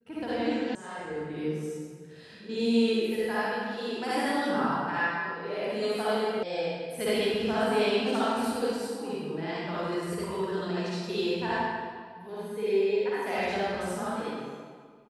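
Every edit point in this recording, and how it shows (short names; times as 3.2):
0.75 sound cut off
6.43 sound cut off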